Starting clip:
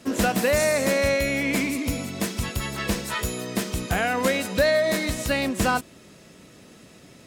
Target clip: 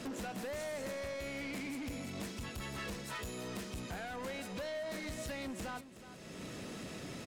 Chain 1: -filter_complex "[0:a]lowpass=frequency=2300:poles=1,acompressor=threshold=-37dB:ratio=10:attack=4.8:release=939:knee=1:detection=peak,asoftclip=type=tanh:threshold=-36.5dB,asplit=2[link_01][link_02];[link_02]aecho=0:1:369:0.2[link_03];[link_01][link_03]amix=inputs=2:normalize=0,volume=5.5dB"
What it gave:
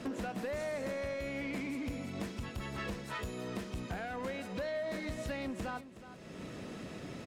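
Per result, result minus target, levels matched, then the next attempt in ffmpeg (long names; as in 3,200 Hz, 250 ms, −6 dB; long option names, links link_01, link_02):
8,000 Hz band −7.5 dB; soft clipping: distortion −7 dB
-filter_complex "[0:a]lowpass=frequency=7600:poles=1,acompressor=threshold=-37dB:ratio=10:attack=4.8:release=939:knee=1:detection=peak,asoftclip=type=tanh:threshold=-36.5dB,asplit=2[link_01][link_02];[link_02]aecho=0:1:369:0.2[link_03];[link_01][link_03]amix=inputs=2:normalize=0,volume=5.5dB"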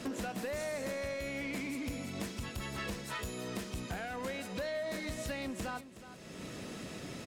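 soft clipping: distortion −7 dB
-filter_complex "[0:a]lowpass=frequency=7600:poles=1,acompressor=threshold=-37dB:ratio=10:attack=4.8:release=939:knee=1:detection=peak,asoftclip=type=tanh:threshold=-43dB,asplit=2[link_01][link_02];[link_02]aecho=0:1:369:0.2[link_03];[link_01][link_03]amix=inputs=2:normalize=0,volume=5.5dB"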